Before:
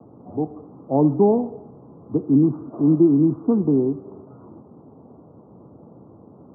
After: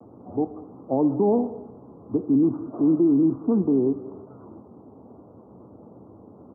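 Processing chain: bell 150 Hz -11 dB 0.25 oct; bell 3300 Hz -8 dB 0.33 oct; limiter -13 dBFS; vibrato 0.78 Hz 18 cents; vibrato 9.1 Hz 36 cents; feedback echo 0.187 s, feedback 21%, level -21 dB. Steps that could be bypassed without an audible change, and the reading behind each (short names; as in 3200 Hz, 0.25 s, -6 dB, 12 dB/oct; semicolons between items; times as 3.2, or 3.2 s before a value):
bell 3300 Hz: input band ends at 850 Hz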